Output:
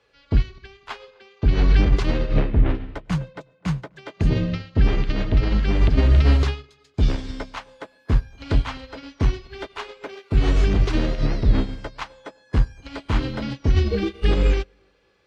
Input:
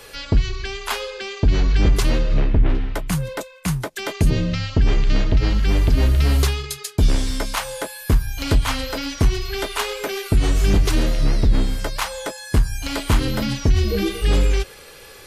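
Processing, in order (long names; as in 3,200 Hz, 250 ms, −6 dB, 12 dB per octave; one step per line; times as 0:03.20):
high-pass filter 44 Hz 12 dB per octave
brickwall limiter −11.5 dBFS, peak gain reduction 6.5 dB
high-frequency loss of the air 160 metres
tape delay 254 ms, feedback 53%, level −12.5 dB, low-pass 1,300 Hz
on a send at −18.5 dB: convolution reverb RT60 0.35 s, pre-delay 94 ms
on the sum: expander for the loud parts 2.5 to 1, over −33 dBFS
level +6 dB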